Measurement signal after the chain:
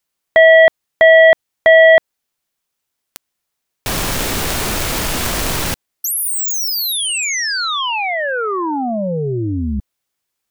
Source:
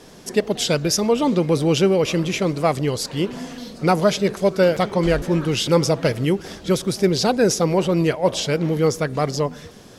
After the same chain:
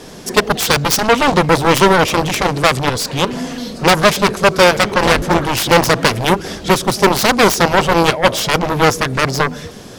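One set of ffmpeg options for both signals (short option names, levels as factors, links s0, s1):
-af "aeval=exprs='0.668*(cos(1*acos(clip(val(0)/0.668,-1,1)))-cos(1*PI/2))+0.15*(cos(7*acos(clip(val(0)/0.668,-1,1)))-cos(7*PI/2))':c=same,apsyclip=6.68,volume=0.794"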